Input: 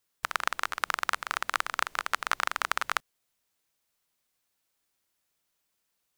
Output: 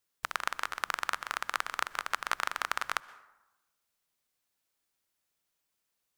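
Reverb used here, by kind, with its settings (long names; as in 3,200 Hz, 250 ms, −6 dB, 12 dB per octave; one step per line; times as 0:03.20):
dense smooth reverb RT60 1 s, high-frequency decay 0.5×, pre-delay 110 ms, DRR 18.5 dB
level −3.5 dB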